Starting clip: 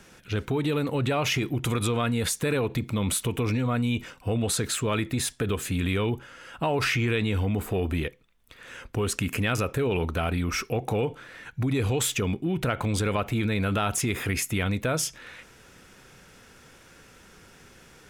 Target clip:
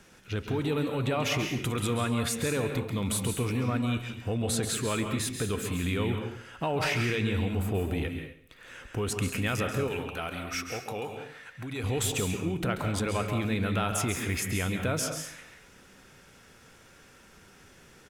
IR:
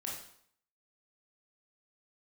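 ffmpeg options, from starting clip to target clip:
-filter_complex "[0:a]asettb=1/sr,asplit=3[a][b][c];[a]atrim=end=9.874[d];[b]atrim=start=9.87:end=11.84,asetpts=PTS-STARTPTS,afade=t=in:d=0.004:c=qsin,afade=t=out:st=1.966:d=0.004:c=qsin,lowshelf=f=460:g=-10.5[e];[c]atrim=start=11.836[f];[d][e]acrossfade=d=0.004:c1=hsin:c2=qsin[g];[g][f]acrossfade=d=0.004:c1=qsin:c2=hsin,aecho=1:1:140|280|420:0.158|0.0412|0.0107,asplit=2[h][i];[1:a]atrim=start_sample=2205,atrim=end_sample=6174,adelay=135[j];[i][j]afir=irnorm=-1:irlink=0,volume=-5dB[k];[h][k]amix=inputs=2:normalize=0,volume=-4dB"

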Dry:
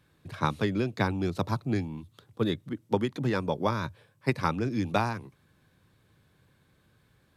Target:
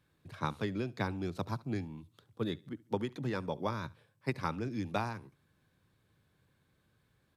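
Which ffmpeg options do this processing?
-af "aecho=1:1:70|140:0.0708|0.0241,volume=-7.5dB"

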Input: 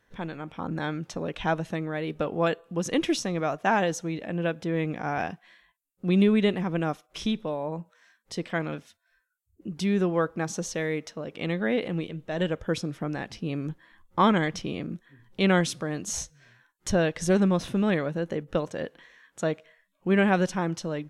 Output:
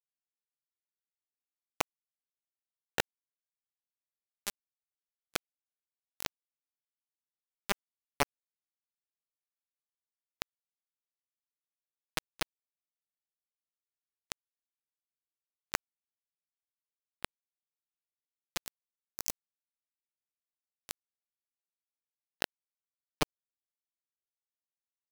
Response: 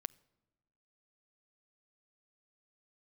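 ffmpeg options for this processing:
-af "lowshelf=f=69:g=-7.5,areverse,acompressor=threshold=-38dB:ratio=10,areverse,acrusher=bits=4:mix=0:aa=0.000001,atempo=0.84,volume=12.5dB"

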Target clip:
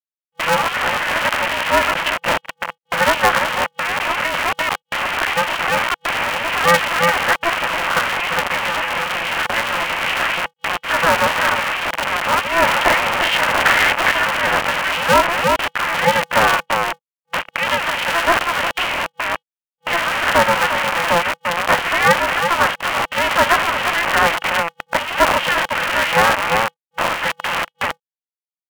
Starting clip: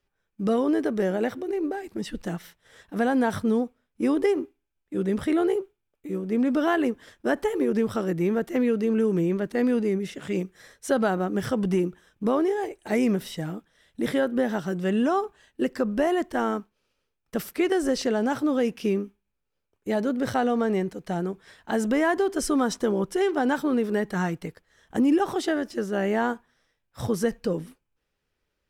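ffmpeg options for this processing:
-filter_complex "[0:a]asettb=1/sr,asplit=3[a][b][c];[a]atrim=end=12.624[d];[b]atrim=start=12.62:end=14.11,asetpts=PTS-STARTPTS,afade=t=in:d=0.004:c=qsin,afade=t=out:st=1.486:d=0.004:c=qsin,aeval=exprs='val(0)+0.5*0.0422*sgn(val(0))':c=same[e];[c]atrim=start=14.106[f];[d][e]acrossfade=d=0.004:c1=hsin:c2=qsin[g];[g][f]acrossfade=d=0.004:c1=qsin:c2=hsin,asettb=1/sr,asplit=3[h][i][j];[h]atrim=end=16.324[k];[i]atrim=start=16.32:end=17.79,asetpts=PTS-STARTPTS,afade=t=in:d=0.004:c=qsin,afade=t=out:st=1.466:d=0.004:c=qsin,highshelf=f=2.1k:g=-5.5[l];[j]atrim=start=17.786[m];[k][l]acrossfade=d=0.004:c1=hsin:c2=qsin[n];[n][m]acrossfade=d=0.004:c1=qsin:c2=hsin,asplit=2[o][p];[p]adelay=349.9,volume=-14dB,highshelf=f=4k:g=-7.87[q];[o][q]amix=inputs=2:normalize=0,asplit=2[r][s];[s]acompressor=threshold=-31dB:ratio=8,volume=3dB[t];[r][t]amix=inputs=2:normalize=0,acrusher=bits=4:mix=0:aa=0.000001,acrossover=split=1300[u][v];[v]volume=26.5dB,asoftclip=hard,volume=-26.5dB[w];[u][w]amix=inputs=2:normalize=0,apsyclip=24dB,afftfilt=real='re*between(b*sr/4096,660,3100)':imag='im*between(b*sr/4096,660,3100)':win_size=4096:overlap=0.75,aeval=exprs='val(0)*sgn(sin(2*PI*170*n/s))':c=same,volume=-5.5dB"

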